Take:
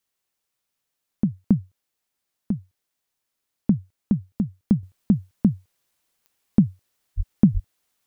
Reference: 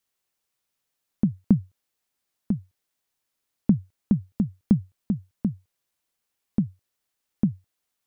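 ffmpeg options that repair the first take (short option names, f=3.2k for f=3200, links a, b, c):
-filter_complex "[0:a]adeclick=t=4,asplit=3[a][b][c];[a]afade=t=out:st=7.16:d=0.02[d];[b]highpass=f=140:w=0.5412,highpass=f=140:w=1.3066,afade=t=in:st=7.16:d=0.02,afade=t=out:st=7.28:d=0.02[e];[c]afade=t=in:st=7.28:d=0.02[f];[d][e][f]amix=inputs=3:normalize=0,asplit=3[g][h][i];[g]afade=t=out:st=7.53:d=0.02[j];[h]highpass=f=140:w=0.5412,highpass=f=140:w=1.3066,afade=t=in:st=7.53:d=0.02,afade=t=out:st=7.65:d=0.02[k];[i]afade=t=in:st=7.65:d=0.02[l];[j][k][l]amix=inputs=3:normalize=0,asetnsamples=n=441:p=0,asendcmd='4.83 volume volume -7dB',volume=0dB"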